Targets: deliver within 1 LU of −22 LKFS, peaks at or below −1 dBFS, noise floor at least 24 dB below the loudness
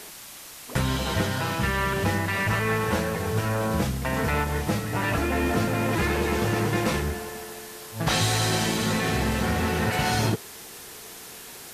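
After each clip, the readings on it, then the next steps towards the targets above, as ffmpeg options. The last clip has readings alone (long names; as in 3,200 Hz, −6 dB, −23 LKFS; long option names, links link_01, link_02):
background noise floor −43 dBFS; target noise floor −50 dBFS; integrated loudness −25.5 LKFS; sample peak −10.5 dBFS; target loudness −22.0 LKFS
→ -af "afftdn=noise_reduction=7:noise_floor=-43"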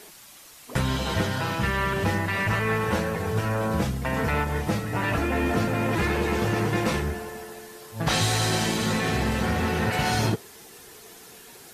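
background noise floor −48 dBFS; target noise floor −50 dBFS
→ -af "afftdn=noise_reduction=6:noise_floor=-48"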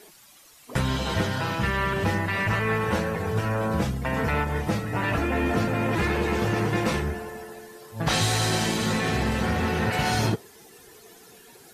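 background noise floor −52 dBFS; integrated loudness −25.5 LKFS; sample peak −11.0 dBFS; target loudness −22.0 LKFS
→ -af "volume=3.5dB"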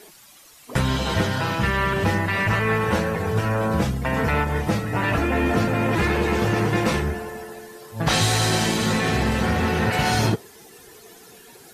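integrated loudness −22.0 LKFS; sample peak −7.5 dBFS; background noise floor −49 dBFS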